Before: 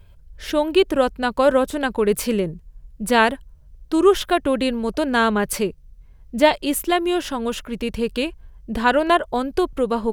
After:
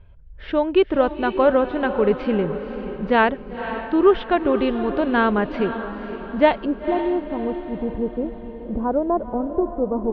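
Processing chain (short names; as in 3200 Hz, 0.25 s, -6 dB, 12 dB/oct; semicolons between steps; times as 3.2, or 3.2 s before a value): Bessel low-pass 2100 Hz, order 8, from 6.64 s 610 Hz; diffused feedback echo 0.51 s, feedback 49%, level -10 dB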